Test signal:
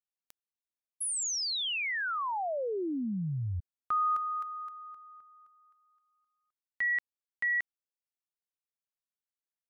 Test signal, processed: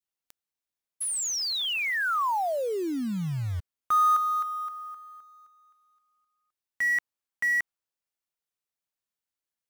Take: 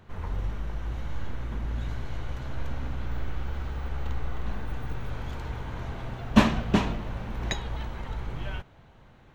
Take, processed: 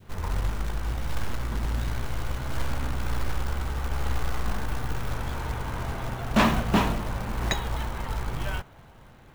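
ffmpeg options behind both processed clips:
ffmpeg -i in.wav -af "acrusher=bits=4:mode=log:mix=0:aa=0.000001,volume=19dB,asoftclip=hard,volume=-19dB,adynamicequalizer=threshold=0.00501:dfrequency=1100:dqfactor=0.92:tfrequency=1100:tqfactor=0.92:attack=5:release=100:ratio=0.375:range=2:mode=boostabove:tftype=bell,volume=3dB" out.wav

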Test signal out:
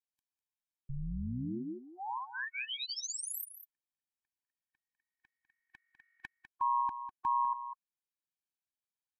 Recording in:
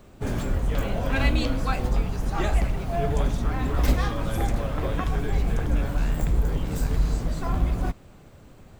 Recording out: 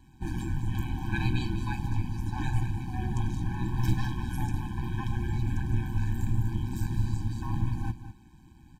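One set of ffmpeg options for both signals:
ffmpeg -i in.wav -filter_complex "[0:a]aeval=exprs='val(0)*sin(2*PI*63*n/s)':channel_layout=same,aresample=32000,aresample=44100,asplit=2[link_01][link_02];[link_02]aecho=0:1:200:0.251[link_03];[link_01][link_03]amix=inputs=2:normalize=0,afftfilt=real='re*eq(mod(floor(b*sr/1024/370),2),0)':imag='im*eq(mod(floor(b*sr/1024/370),2),0)':win_size=1024:overlap=0.75,volume=-2dB" out.wav

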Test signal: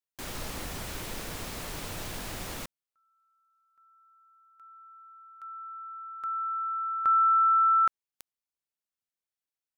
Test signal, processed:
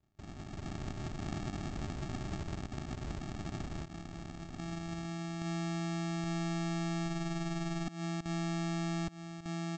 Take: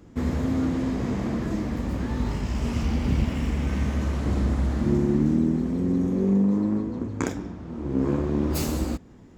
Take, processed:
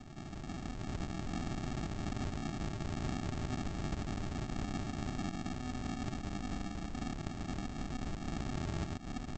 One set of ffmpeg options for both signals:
ffmpeg -i in.wav -filter_complex "[0:a]highpass=1400,equalizer=frequency=5500:width=1.1:gain=6.5,asplit=2[link_01][link_02];[link_02]adelay=1199,lowpass=frequency=4700:poles=1,volume=-12.5dB,asplit=2[link_03][link_04];[link_04]adelay=1199,lowpass=frequency=4700:poles=1,volume=0.21,asplit=2[link_05][link_06];[link_06]adelay=1199,lowpass=frequency=4700:poles=1,volume=0.21[link_07];[link_01][link_03][link_05][link_07]amix=inputs=4:normalize=0,acrossover=split=2100[link_08][link_09];[link_08]asoftclip=type=tanh:threshold=-36dB[link_10];[link_10][link_09]amix=inputs=2:normalize=0,aecho=1:1:4.1:0.66,acompressor=threshold=-58dB:ratio=6:attack=0.95:release=182:knee=6:detection=peak,aresample=16000,acrusher=samples=32:mix=1:aa=0.000001,aresample=44100,dynaudnorm=framelen=150:gausssize=9:maxgain=7dB,volume=16.5dB" out.wav

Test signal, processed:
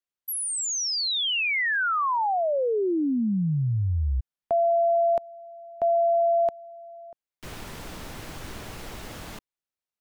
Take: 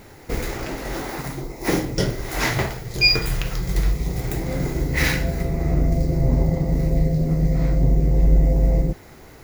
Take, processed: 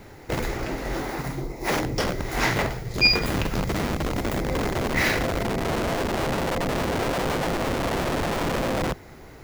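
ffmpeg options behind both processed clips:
ffmpeg -i in.wav -filter_complex "[0:a]acrossover=split=420|1200|5300[link_01][link_02][link_03][link_04];[link_01]aeval=exprs='(mod(10.6*val(0)+1,2)-1)/10.6':channel_layout=same[link_05];[link_05][link_02][link_03][link_04]amix=inputs=4:normalize=0,highshelf=frequency=5200:gain=-6.5" out.wav

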